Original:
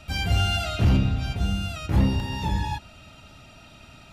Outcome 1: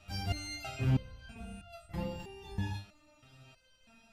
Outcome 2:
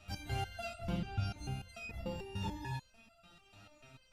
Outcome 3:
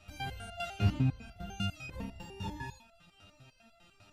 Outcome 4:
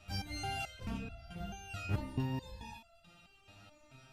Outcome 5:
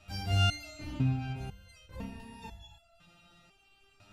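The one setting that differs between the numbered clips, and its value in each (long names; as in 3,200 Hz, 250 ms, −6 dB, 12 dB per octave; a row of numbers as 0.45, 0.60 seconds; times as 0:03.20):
step-sequenced resonator, speed: 3.1, 6.8, 10, 4.6, 2 Hertz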